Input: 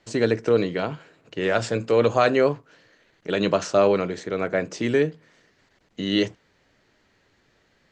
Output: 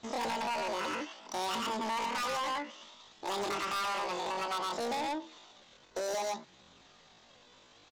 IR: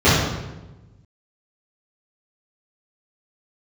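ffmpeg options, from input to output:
-filter_complex "[0:a]aresample=8000,aeval=exprs='0.178*(abs(mod(val(0)/0.178+3,4)-2)-1)':c=same,aresample=44100,flanger=delay=0.5:depth=3.5:regen=61:speed=0.6:shape=sinusoidal,asplit=2[s0][s1];[s1]aecho=0:1:112:0.708[s2];[s0][s2]amix=inputs=2:normalize=0,acompressor=threshold=0.0282:ratio=16,asetrate=88200,aresample=44100,atempo=0.5,equalizer=f=2100:t=o:w=0.77:g=2.5,asoftclip=type=tanh:threshold=0.0126,lowshelf=f=84:g=-9,volume=2.24"

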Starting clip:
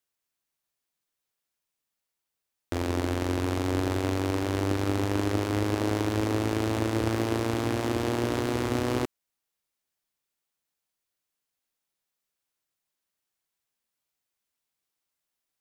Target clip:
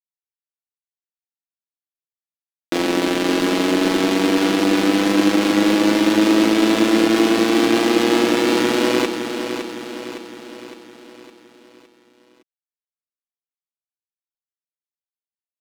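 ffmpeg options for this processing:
-filter_complex "[0:a]lowshelf=f=150:t=q:w=3:g=-12,aeval=exprs='val(0)*gte(abs(val(0)),0.015)':c=same,equalizer=f=3300:w=0.66:g=7.5,alimiter=limit=0.188:level=0:latency=1,aecho=1:1:6.1:0.6,asplit=2[s0][s1];[s1]aecho=0:1:561|1122|1683|2244|2805|3366:0.398|0.207|0.108|0.056|0.0291|0.0151[s2];[s0][s2]amix=inputs=2:normalize=0,volume=2.82"

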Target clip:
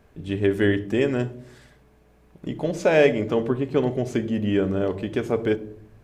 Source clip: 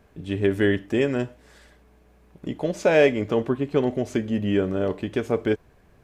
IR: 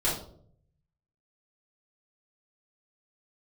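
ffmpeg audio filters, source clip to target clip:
-filter_complex "[0:a]asplit=2[s0][s1];[1:a]atrim=start_sample=2205,lowshelf=f=450:g=11.5,adelay=30[s2];[s1][s2]afir=irnorm=-1:irlink=0,volume=0.0376[s3];[s0][s3]amix=inputs=2:normalize=0"

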